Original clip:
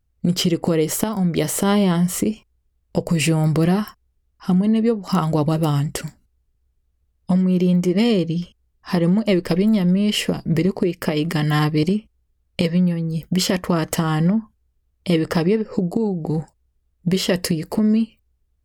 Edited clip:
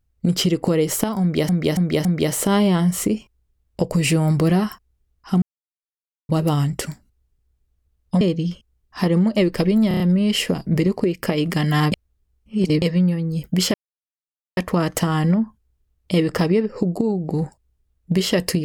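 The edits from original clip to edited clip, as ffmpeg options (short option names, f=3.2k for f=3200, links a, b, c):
-filter_complex "[0:a]asplit=14[a][b][c][d][e][f][g][h][i][j][k][l][m][n];[a]atrim=end=1.492[o];[b]atrim=start=1.208:end=1.492[p];[c]atrim=start=1.208:end=1.492[q];[d]atrim=start=1.208:end=4.58,asetpts=PTS-STARTPTS,afade=t=out:st=3.368:d=0.004:c=hsin[r];[e]atrim=start=4.58:end=5.45,asetpts=PTS-STARTPTS,volume=0[s];[f]atrim=start=5.45:end=7.372,asetpts=PTS-STARTPTS,afade=t=in:d=0.004:c=hsin[t];[g]atrim=start=8.118:end=9.822[u];[h]atrim=start=9.788:end=9.822[v];[i]atrim=start=9.788:end=9.822[w];[j]atrim=start=9.788:end=9.822[x];[k]atrim=start=9.788:end=11.712[y];[l]atrim=start=11.708:end=12.612,asetpts=PTS-STARTPTS,areverse[z];[m]atrim=start=12.608:end=13.53,asetpts=PTS-STARTPTS,afade=t=out:st=0.918:d=0.004:c=hsin,apad=pad_dur=0.83[aa];[n]atrim=start=13.53,asetpts=PTS-STARTPTS,afade=t=in:d=0.004:c=hsin[ab];[o][p]acrossfade=d=0.004:c1=hsin:c2=hsin[ac];[ac][q]acrossfade=d=0.004:c1=hsin:c2=hsin[ad];[r][s][t]concat=n=3:v=0:a=1[ae];[ad][ae]acrossfade=d=0.004:c1=hsin:c2=hsin[af];[af][u]acrossfade=d=0.004:c1=hsin:c2=hsin[ag];[ag][v]acrossfade=d=0.004:c1=hsin:c2=hsin[ah];[ah][w]acrossfade=d=0.004:c1=hsin:c2=hsin[ai];[ai][x]acrossfade=d=0.004:c1=hsin:c2=hsin[aj];[aj][y]acrossfade=d=0.004:c1=hsin:c2=hsin[ak];[ak][z]acrossfade=d=0.004:c1=hsin:c2=hsin[al];[aa][ab]concat=n=2:v=0:a=1[am];[al][am]acrossfade=d=0.004:c1=hsin:c2=hsin"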